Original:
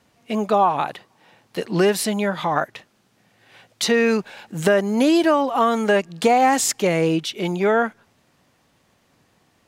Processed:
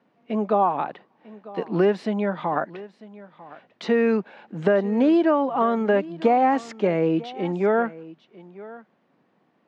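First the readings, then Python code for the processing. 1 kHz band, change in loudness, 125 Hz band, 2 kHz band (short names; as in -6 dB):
-3.5 dB, -3.0 dB, -3.0 dB, -7.0 dB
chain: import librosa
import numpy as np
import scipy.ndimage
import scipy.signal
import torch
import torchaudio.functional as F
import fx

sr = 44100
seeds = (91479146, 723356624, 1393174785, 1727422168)

p1 = scipy.signal.sosfilt(scipy.signal.butter(4, 170.0, 'highpass', fs=sr, output='sos'), x)
p2 = fx.spacing_loss(p1, sr, db_at_10k=39)
y = p2 + fx.echo_single(p2, sr, ms=947, db=-19.0, dry=0)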